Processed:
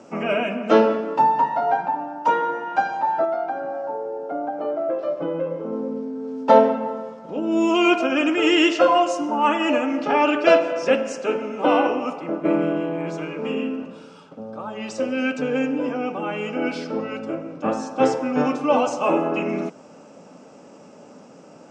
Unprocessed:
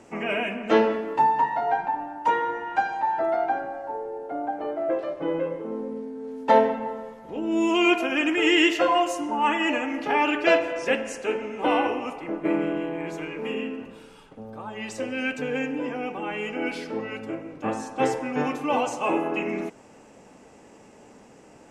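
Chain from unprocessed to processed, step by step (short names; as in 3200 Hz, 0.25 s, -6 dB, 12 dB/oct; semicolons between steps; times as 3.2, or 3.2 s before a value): 3.24–5.73 compressor 2.5:1, threshold -29 dBFS, peak gain reduction 6.5 dB; speaker cabinet 130–7700 Hz, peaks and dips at 170 Hz +8 dB, 260 Hz +5 dB, 580 Hz +8 dB, 1300 Hz +7 dB, 1900 Hz -7 dB, 5300 Hz +5 dB; gain +1.5 dB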